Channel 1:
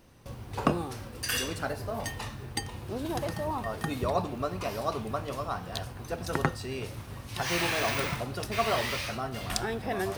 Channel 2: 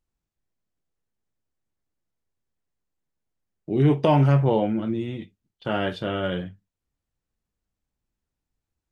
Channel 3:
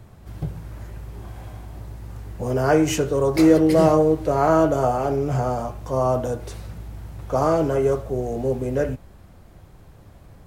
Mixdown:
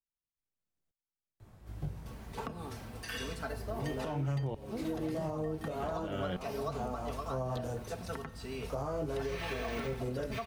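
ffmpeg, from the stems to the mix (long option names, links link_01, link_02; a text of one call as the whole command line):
ffmpeg -i stem1.wav -i stem2.wav -i stem3.wav -filter_complex "[0:a]acrossover=split=3900[link_01][link_02];[link_02]acompressor=threshold=-43dB:ratio=4:attack=1:release=60[link_03];[link_01][link_03]amix=inputs=2:normalize=0,aecho=1:1:4.5:0.7,adelay=1800,volume=-7dB[link_04];[1:a]aeval=exprs='val(0)*pow(10,-23*if(lt(mod(-1.1*n/s,1),2*abs(-1.1)/1000),1-mod(-1.1*n/s,1)/(2*abs(-1.1)/1000),(mod(-1.1*n/s,1)-2*abs(-1.1)/1000)/(1-2*abs(-1.1)/1000))/20)':channel_layout=same,volume=-2.5dB,asplit=2[link_05][link_06];[2:a]flanger=delay=19:depth=7.4:speed=0.38,adelay=1400,volume=-6.5dB[link_07];[link_06]apad=whole_len=523216[link_08];[link_07][link_08]sidechaincompress=threshold=-40dB:ratio=8:attack=43:release=594[link_09];[link_04][link_05][link_09]amix=inputs=3:normalize=0,acrossover=split=130[link_10][link_11];[link_11]acompressor=threshold=-32dB:ratio=6[link_12];[link_10][link_12]amix=inputs=2:normalize=0,alimiter=level_in=2.5dB:limit=-24dB:level=0:latency=1:release=177,volume=-2.5dB" out.wav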